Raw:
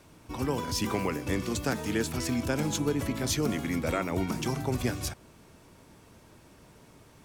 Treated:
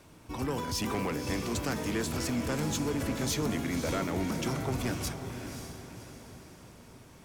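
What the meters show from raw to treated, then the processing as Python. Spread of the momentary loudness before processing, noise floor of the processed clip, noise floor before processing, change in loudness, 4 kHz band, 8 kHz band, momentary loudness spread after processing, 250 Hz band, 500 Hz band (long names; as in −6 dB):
4 LU, −53 dBFS, −56 dBFS, −2.0 dB, −1.0 dB, −1.0 dB, 17 LU, −1.5 dB, −2.5 dB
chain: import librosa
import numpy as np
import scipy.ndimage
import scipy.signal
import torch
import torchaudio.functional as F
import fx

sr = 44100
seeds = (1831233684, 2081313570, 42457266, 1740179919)

p1 = 10.0 ** (-25.5 / 20.0) * np.tanh(x / 10.0 ** (-25.5 / 20.0))
y = p1 + fx.echo_diffused(p1, sr, ms=558, feedback_pct=45, wet_db=-7.5, dry=0)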